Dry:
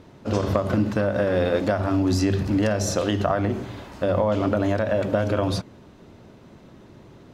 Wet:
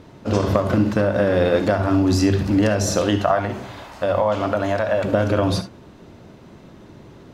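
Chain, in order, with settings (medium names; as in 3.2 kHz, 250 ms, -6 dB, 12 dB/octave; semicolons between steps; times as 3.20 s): 3.18–5.04 s: resonant low shelf 510 Hz -6 dB, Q 1.5; gated-style reverb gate 90 ms rising, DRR 10 dB; trim +3.5 dB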